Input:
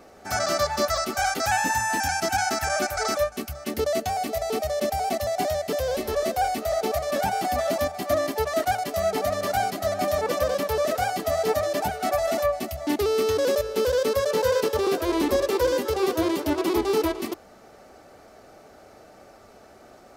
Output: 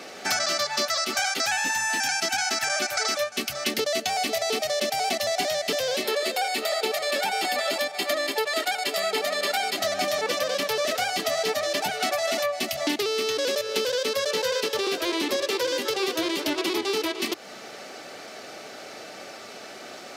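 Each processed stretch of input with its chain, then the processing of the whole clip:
0:06.04–0:09.78: high-pass filter 190 Hz 24 dB per octave + notch filter 5,900 Hz, Q 7.6 + comb filter 2.2 ms, depth 36%
whole clip: meter weighting curve D; downward compressor 6 to 1, threshold −31 dBFS; high-pass filter 110 Hz 24 dB per octave; level +7.5 dB

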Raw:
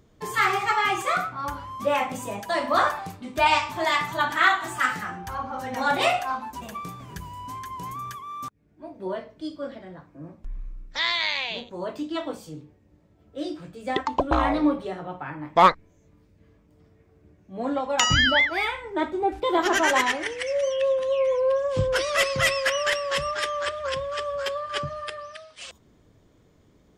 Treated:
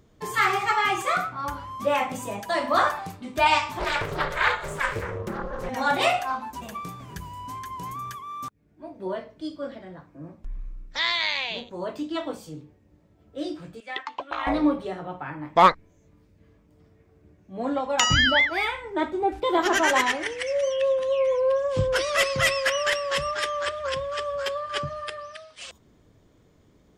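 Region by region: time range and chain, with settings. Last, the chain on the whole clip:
0:03.79–0:05.69: low shelf with overshoot 330 Hz +10 dB, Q 1.5 + ring modulation 280 Hz + highs frequency-modulated by the lows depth 0.51 ms
0:13.80–0:14.47: resonant band-pass 2,400 Hz, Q 1.1 + double-tracking delay 14 ms −12 dB
whole clip: no processing

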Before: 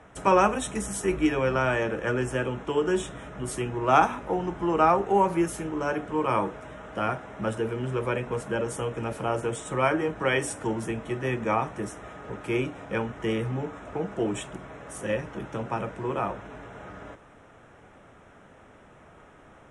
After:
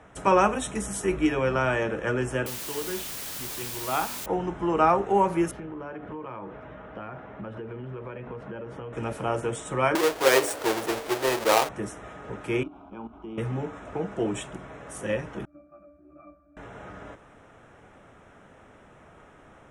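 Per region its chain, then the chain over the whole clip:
0:02.46–0:04.26: transistor ladder low-pass 4,500 Hz, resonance 45% + bit-depth reduction 6 bits, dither triangular
0:05.51–0:08.93: high-pass filter 50 Hz + high-frequency loss of the air 330 metres + downward compressor 12 to 1, threshold −33 dBFS
0:09.95–0:11.69: each half-wave held at its own peak + low shelf with overshoot 280 Hz −13.5 dB, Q 1.5
0:12.63–0:13.38: output level in coarse steps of 11 dB + high-frequency loss of the air 380 metres + phaser with its sweep stopped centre 500 Hz, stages 6
0:15.45–0:16.57: phaser with its sweep stopped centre 640 Hz, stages 8 + resonances in every octave D, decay 0.39 s
whole clip: no processing

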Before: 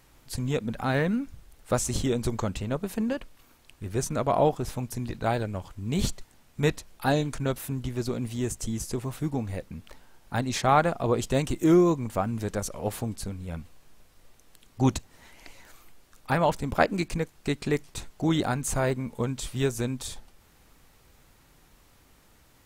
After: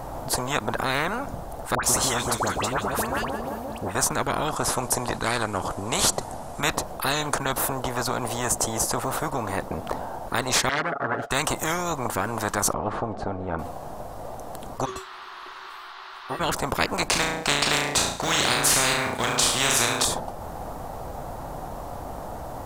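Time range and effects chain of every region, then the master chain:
0:01.75–0:03.95: high-pass filter 53 Hz + all-pass dispersion highs, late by 85 ms, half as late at 1,400 Hz + repeating echo 176 ms, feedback 46%, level −15 dB
0:04.48–0:06.61: phase distortion by the signal itself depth 0.05 ms + low-pass filter 11,000 Hz 24 dB per octave + high-shelf EQ 6,400 Hz +10 dB
0:10.69–0:11.31: phase distortion by the signal itself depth 0.66 ms + pair of resonant band-passes 960 Hz, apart 1.1 octaves + comb filter 7.1 ms, depth 79%
0:12.73–0:13.59: head-to-tape spacing loss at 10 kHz 36 dB + notch filter 990 Hz, Q 7.7
0:14.84–0:16.39: tuned comb filter 380 Hz, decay 0.22 s, harmonics odd, mix 100% + noise in a band 1,100–4,200 Hz −57 dBFS
0:17.09–0:20.05: mu-law and A-law mismatch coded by A + meter weighting curve D + flutter between parallel walls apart 6 metres, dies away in 0.49 s
whole clip: drawn EQ curve 400 Hz 0 dB, 700 Hz +13 dB, 2,300 Hz −15 dB, 9,900 Hz −10 dB; every bin compressed towards the loudest bin 10 to 1; level −1.5 dB

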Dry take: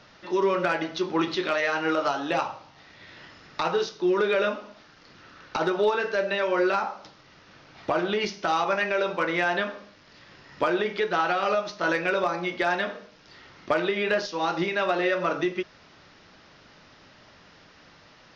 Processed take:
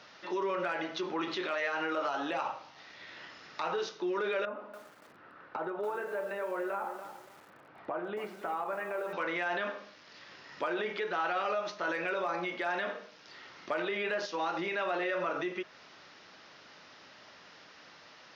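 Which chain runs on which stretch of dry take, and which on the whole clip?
0:04.45–0:09.13: low-pass filter 1,400 Hz + downward compressor 2 to 1, threshold −36 dBFS + feedback echo at a low word length 285 ms, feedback 35%, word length 8 bits, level −10.5 dB
whole clip: brickwall limiter −22.5 dBFS; high-pass filter 450 Hz 6 dB per octave; dynamic equaliser 5,000 Hz, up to −7 dB, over −54 dBFS, Q 1.2

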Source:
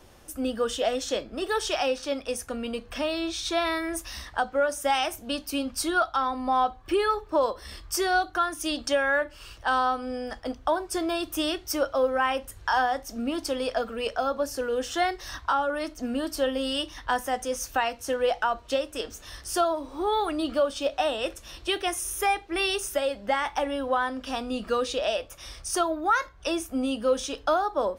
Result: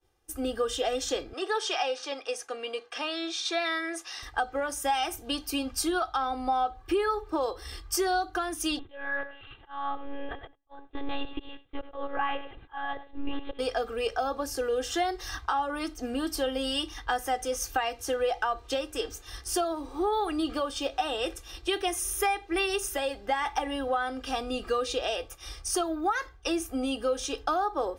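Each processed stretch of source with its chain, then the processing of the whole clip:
0:01.33–0:04.23: band-pass filter 470–6,900 Hz + one half of a high-frequency compander encoder only
0:08.79–0:13.59: volume swells 592 ms + repeating echo 94 ms, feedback 28%, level −13 dB + one-pitch LPC vocoder at 8 kHz 280 Hz
whole clip: downward expander −40 dBFS; comb filter 2.5 ms, depth 69%; downward compressor 3 to 1, threshold −24 dBFS; level −1 dB

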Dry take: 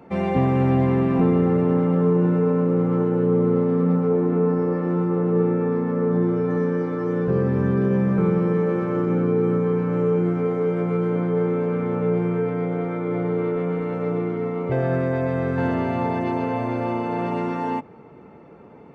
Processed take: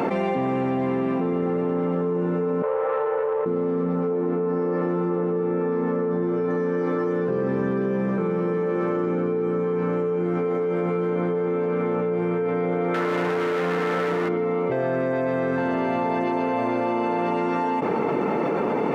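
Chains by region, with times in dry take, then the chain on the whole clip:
0:02.62–0:03.46: elliptic high-pass filter 480 Hz + high-frequency loss of the air 460 metres + tube saturation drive 23 dB, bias 0.55
0:12.94–0:14.29: low-pass with resonance 1,700 Hz, resonance Q 5.9 + hard clipping −24 dBFS
whole clip: high-pass filter 240 Hz 12 dB per octave; envelope flattener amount 100%; level −4.5 dB

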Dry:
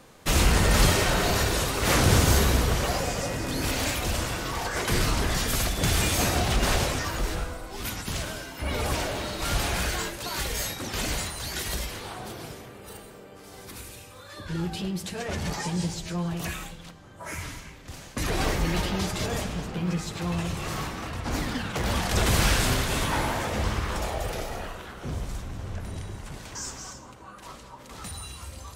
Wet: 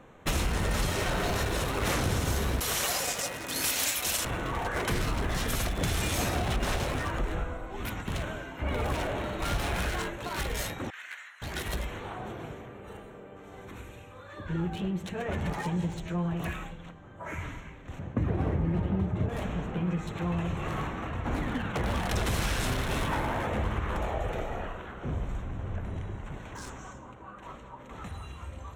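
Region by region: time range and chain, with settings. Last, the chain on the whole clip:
0:02.60–0:04.25: downward expander −27 dBFS + spectral tilt +3.5 dB per octave
0:10.90–0:11.42: noise gate −27 dBFS, range −12 dB + high-pass with resonance 1,700 Hz, resonance Q 3.2
0:17.99–0:19.29: high-pass filter 76 Hz 24 dB per octave + spectral tilt −4 dB per octave
whole clip: adaptive Wiener filter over 9 samples; downward compressor, threshold −25 dBFS; notch filter 4,700 Hz, Q 14

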